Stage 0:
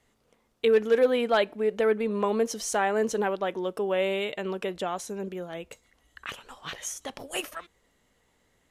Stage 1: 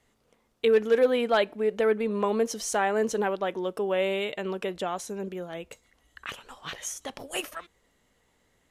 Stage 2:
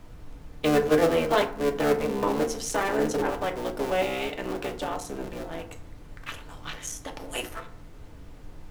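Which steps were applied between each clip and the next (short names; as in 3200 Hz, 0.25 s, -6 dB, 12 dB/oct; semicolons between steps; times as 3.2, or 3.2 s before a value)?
nothing audible
cycle switcher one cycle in 3, muted; added noise brown -43 dBFS; FDN reverb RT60 0.55 s, low-frequency decay 1×, high-frequency decay 0.5×, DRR 4 dB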